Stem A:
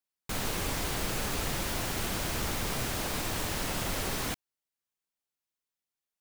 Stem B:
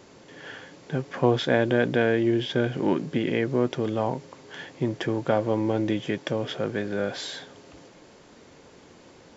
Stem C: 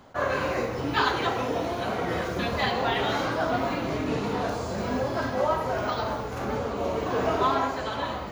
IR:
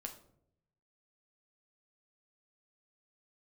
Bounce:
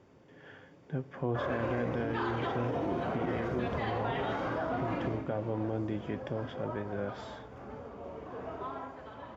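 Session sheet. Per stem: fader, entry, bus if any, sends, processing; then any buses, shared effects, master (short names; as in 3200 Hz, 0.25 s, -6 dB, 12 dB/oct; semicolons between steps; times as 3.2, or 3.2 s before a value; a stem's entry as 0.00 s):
off
-11.5 dB, 0.00 s, bus A, send -7.5 dB, bell 73 Hz +6.5 dB 2 oct
5.05 s -3 dB -> 5.28 s -15.5 dB, 1.20 s, bus A, send -22.5 dB, dry
bus A: 0.0 dB, LPF 2000 Hz 6 dB/oct; limiter -25.5 dBFS, peak gain reduction 10.5 dB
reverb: on, RT60 0.70 s, pre-delay 7 ms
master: high shelf 4400 Hz -6.5 dB; notch 4100 Hz, Q 8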